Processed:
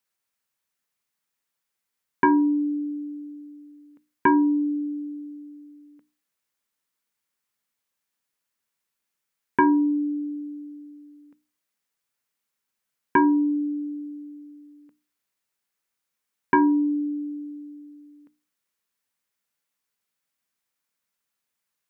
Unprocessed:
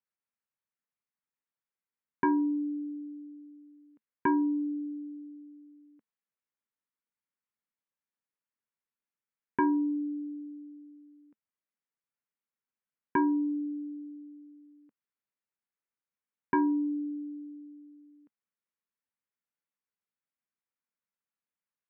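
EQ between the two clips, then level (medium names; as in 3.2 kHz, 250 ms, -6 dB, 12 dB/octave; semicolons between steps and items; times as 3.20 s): treble shelf 2 kHz +6 dB; hum notches 60/120/180/240/300 Hz; +8.0 dB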